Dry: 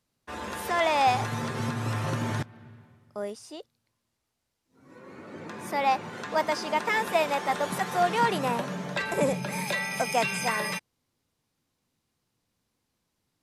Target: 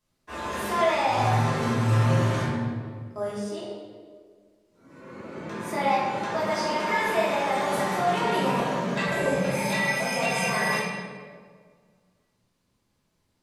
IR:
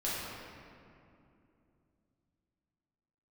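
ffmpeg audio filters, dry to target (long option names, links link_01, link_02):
-filter_complex "[0:a]alimiter=limit=-21dB:level=0:latency=1:release=31[link_01];[1:a]atrim=start_sample=2205,asetrate=79380,aresample=44100[link_02];[link_01][link_02]afir=irnorm=-1:irlink=0,volume=3dB"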